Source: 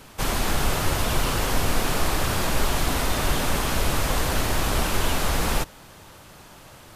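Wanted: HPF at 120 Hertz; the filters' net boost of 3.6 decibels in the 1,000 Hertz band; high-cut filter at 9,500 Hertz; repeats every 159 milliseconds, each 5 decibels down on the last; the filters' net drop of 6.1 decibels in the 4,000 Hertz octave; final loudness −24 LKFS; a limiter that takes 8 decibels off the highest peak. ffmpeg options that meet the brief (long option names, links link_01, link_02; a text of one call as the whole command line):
ffmpeg -i in.wav -af "highpass=120,lowpass=9500,equalizer=frequency=1000:width_type=o:gain=5,equalizer=frequency=4000:width_type=o:gain=-8.5,alimiter=limit=-20dB:level=0:latency=1,aecho=1:1:159|318|477|636|795|954|1113:0.562|0.315|0.176|0.0988|0.0553|0.031|0.0173,volume=3.5dB" out.wav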